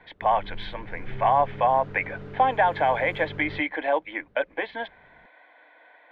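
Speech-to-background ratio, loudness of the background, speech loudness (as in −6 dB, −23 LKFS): 15.5 dB, −40.5 LKFS, −25.0 LKFS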